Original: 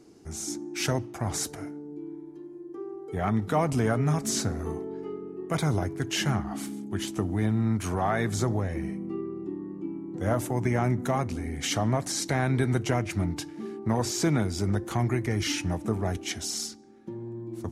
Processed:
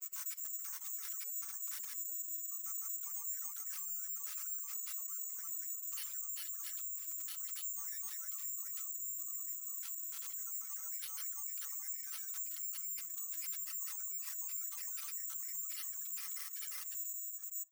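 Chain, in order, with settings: comb 5.3 ms, depth 83%; granulator, grains 20 per s, spray 605 ms, pitch spread up and down by 0 st; compression 1.5:1, threshold -37 dBFS, peak gain reduction 6.5 dB; careless resampling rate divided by 6×, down none, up zero stuff; peak limiter -30 dBFS, peak gain reduction 26 dB; treble shelf 5.8 kHz +4.5 dB; reverberation RT60 0.45 s, pre-delay 37 ms, DRR 10 dB; reverb removal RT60 1.2 s; elliptic high-pass 1.1 kHz, stop band 70 dB; trim +1 dB

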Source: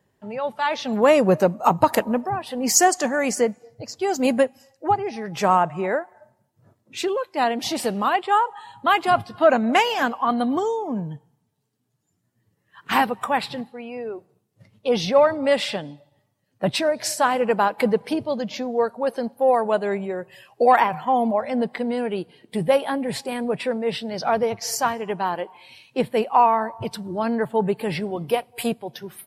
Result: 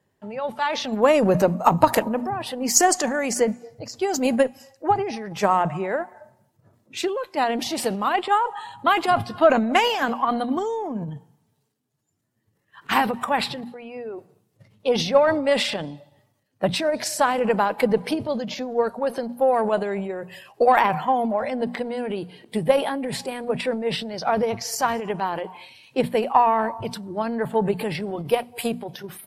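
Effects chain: Chebyshev shaper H 4 -33 dB, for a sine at -2 dBFS; hum notches 60/120/180/240 Hz; transient shaper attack +5 dB, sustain +9 dB; trim -3.5 dB

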